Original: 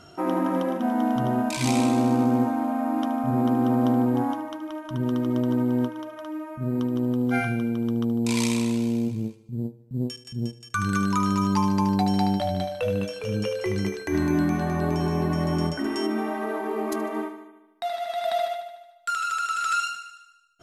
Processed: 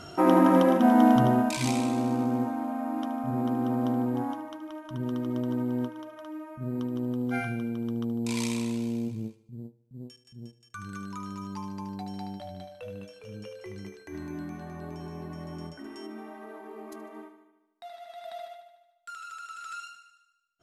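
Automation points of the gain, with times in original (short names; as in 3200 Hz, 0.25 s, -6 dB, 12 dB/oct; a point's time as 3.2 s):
1.11 s +5 dB
1.81 s -6 dB
9.26 s -6 dB
9.81 s -15 dB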